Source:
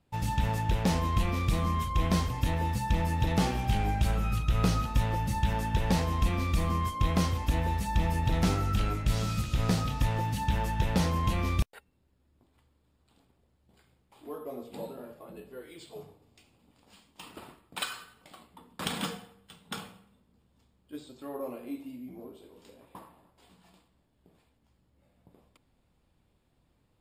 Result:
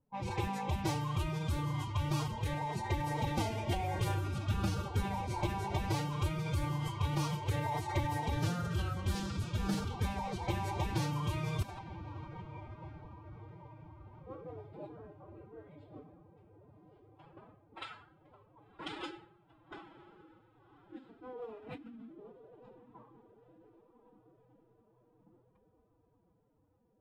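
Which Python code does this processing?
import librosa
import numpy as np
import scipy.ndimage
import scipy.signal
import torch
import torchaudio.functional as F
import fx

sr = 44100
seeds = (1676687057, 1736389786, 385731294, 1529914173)

y = fx.echo_diffused(x, sr, ms=1091, feedback_pct=57, wet_db=-12.0)
y = fx.pitch_keep_formants(y, sr, semitones=10.0)
y = fx.env_lowpass(y, sr, base_hz=970.0, full_db=-23.5)
y = y * 10.0 ** (-7.0 / 20.0)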